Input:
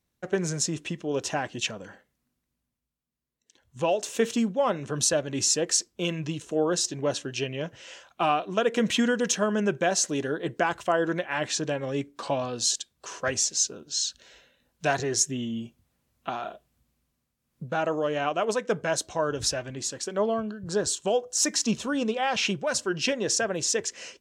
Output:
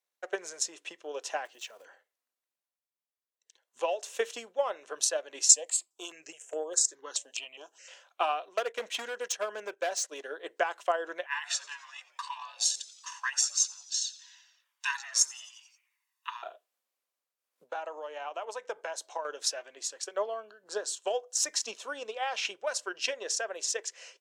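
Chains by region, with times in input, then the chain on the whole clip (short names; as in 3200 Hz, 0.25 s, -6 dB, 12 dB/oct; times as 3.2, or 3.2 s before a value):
1.45–1.86 block floating point 5-bit + compressor 2:1, threshold -38 dBFS
5.49–7.88 bell 7500 Hz +12.5 dB 0.56 oct + step phaser 4.8 Hz 370–5000 Hz
8.48–10.24 gate -31 dBFS, range -14 dB + overloaded stage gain 20.5 dB + upward compressor, threshold -27 dBFS
11.26–16.43 brick-wall FIR high-pass 870 Hz + comb 1.1 ms, depth 71% + frequency-shifting echo 88 ms, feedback 62%, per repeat -150 Hz, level -17 dB
17.65–19.25 bell 890 Hz +11.5 dB 0.21 oct + compressor 2.5:1, threshold -29 dBFS
whole clip: transient shaper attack +7 dB, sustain 0 dB; HPF 480 Hz 24 dB/oct; gain -7.5 dB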